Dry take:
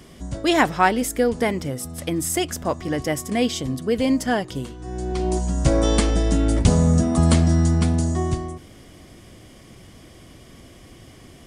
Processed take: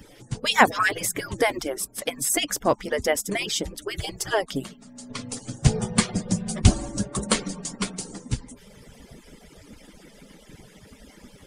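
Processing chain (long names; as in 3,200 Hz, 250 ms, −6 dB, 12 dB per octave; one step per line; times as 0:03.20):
harmonic-percussive split with one part muted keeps percussive
0:00.67–0:01.78: multiband upward and downward compressor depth 40%
level +3 dB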